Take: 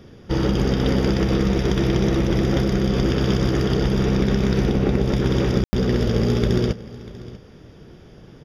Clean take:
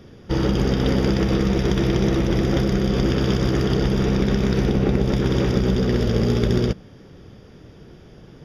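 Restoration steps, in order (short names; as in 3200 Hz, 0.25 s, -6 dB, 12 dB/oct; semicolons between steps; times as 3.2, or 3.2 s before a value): room tone fill 5.64–5.73; inverse comb 0.642 s -18.5 dB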